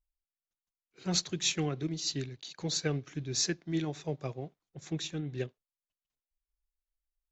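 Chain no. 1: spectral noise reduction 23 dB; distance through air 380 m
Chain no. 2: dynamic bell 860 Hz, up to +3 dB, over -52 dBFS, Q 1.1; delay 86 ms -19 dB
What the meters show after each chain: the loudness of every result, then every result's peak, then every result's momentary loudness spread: -38.0 LUFS, -34.0 LUFS; -20.0 dBFS, -14.5 dBFS; 7 LU, 11 LU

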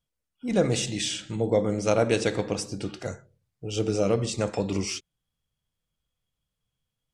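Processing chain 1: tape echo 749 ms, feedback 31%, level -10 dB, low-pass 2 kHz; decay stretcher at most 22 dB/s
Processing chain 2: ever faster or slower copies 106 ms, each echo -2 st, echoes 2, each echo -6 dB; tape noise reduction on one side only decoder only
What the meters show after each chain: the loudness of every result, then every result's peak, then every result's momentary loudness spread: -24.0 LUFS, -26.5 LUFS; -8.0 dBFS, -7.0 dBFS; 16 LU, 15 LU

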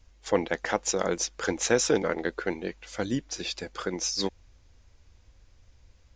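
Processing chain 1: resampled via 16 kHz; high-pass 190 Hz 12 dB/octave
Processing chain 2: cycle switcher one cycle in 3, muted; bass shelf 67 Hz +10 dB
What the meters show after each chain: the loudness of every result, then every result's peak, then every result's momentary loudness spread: -29.5 LUFS, -30.5 LUFS; -8.5 dBFS, -9.0 dBFS; 9 LU, 9 LU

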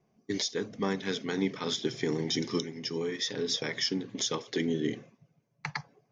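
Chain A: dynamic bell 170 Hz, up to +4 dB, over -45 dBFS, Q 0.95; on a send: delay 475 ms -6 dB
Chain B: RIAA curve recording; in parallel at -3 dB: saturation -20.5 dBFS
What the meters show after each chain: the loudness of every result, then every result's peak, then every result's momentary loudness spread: -30.5 LUFS, -24.5 LUFS; -14.0 dBFS, -6.5 dBFS; 8 LU, 11 LU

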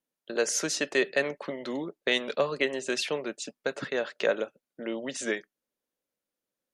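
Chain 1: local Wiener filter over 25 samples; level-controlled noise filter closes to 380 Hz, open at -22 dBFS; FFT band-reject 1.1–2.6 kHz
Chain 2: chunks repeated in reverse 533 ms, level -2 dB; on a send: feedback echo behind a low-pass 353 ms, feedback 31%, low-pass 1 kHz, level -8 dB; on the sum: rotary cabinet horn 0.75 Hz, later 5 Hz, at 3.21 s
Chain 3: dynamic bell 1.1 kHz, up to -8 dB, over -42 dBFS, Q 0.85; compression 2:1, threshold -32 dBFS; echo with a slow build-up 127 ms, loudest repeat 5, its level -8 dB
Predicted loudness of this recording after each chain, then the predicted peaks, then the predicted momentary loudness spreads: -33.0 LUFS, -30.0 LUFS, -32.5 LUFS; -13.5 dBFS, -11.0 dBFS, -16.5 dBFS; 9 LU, 13 LU, 5 LU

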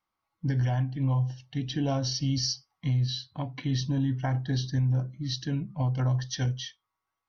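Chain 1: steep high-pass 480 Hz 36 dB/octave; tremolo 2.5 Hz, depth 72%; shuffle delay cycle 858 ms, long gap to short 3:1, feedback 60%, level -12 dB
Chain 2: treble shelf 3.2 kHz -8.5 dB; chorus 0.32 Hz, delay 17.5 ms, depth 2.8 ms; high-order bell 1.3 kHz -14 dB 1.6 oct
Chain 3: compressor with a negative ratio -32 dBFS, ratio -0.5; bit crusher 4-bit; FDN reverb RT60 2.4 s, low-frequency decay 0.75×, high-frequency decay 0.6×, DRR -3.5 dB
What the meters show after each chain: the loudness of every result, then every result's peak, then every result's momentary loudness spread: -40.0 LUFS, -34.5 LUFS, -32.0 LUFS; -19.5 dBFS, -21.5 dBFS, -11.5 dBFS; 15 LU, 9 LU, 12 LU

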